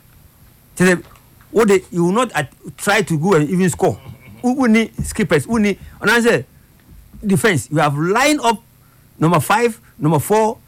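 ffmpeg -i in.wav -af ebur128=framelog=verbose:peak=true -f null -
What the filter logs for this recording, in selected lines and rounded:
Integrated loudness:
  I:         -16.4 LUFS
  Threshold: -27.2 LUFS
Loudness range:
  LRA:         1.1 LU
  Threshold: -37.0 LUFS
  LRA low:   -17.6 LUFS
  LRA high:  -16.5 LUFS
True peak:
  Peak:       -5.9 dBFS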